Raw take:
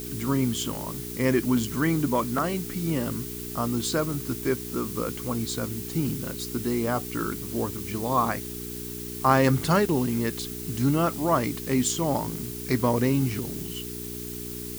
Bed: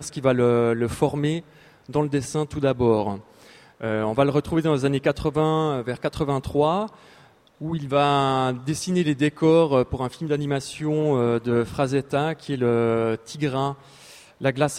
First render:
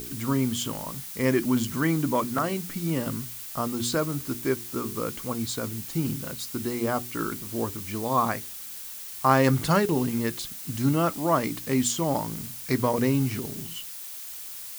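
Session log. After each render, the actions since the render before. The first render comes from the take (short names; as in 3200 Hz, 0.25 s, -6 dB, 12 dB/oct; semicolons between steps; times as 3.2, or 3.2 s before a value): de-hum 60 Hz, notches 7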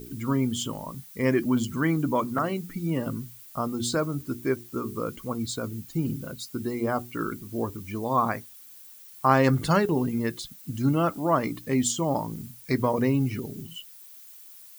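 denoiser 13 dB, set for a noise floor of -39 dBFS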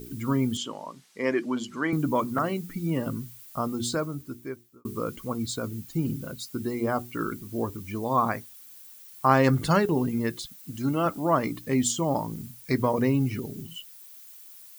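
0.57–1.93 BPF 320–6000 Hz; 3.72–4.85 fade out; 10.46–11.06 low shelf 170 Hz -9.5 dB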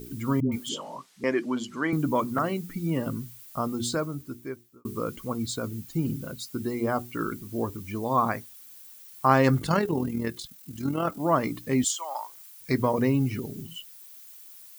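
0.4–1.24 dispersion highs, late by 0.118 s, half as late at 490 Hz; 9.59–11.2 AM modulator 41 Hz, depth 35%; 11.84–12.61 HPF 820 Hz 24 dB/oct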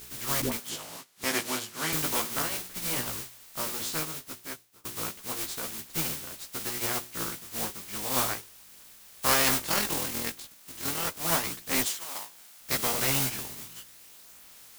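spectral contrast lowered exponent 0.27; chorus voices 2, 0.17 Hz, delay 15 ms, depth 4.2 ms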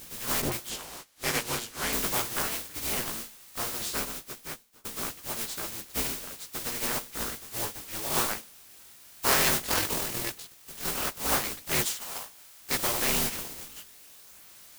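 polarity switched at an audio rate 110 Hz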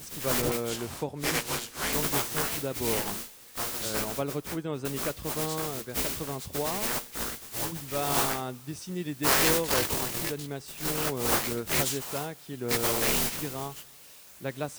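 add bed -12.5 dB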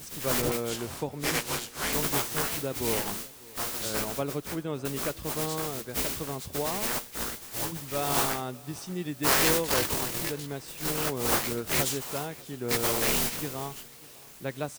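feedback echo 0.595 s, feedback 41%, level -23 dB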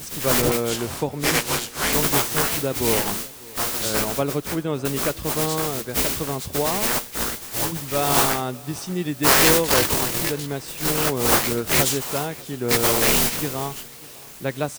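gain +8 dB; limiter -1 dBFS, peak gain reduction 1.5 dB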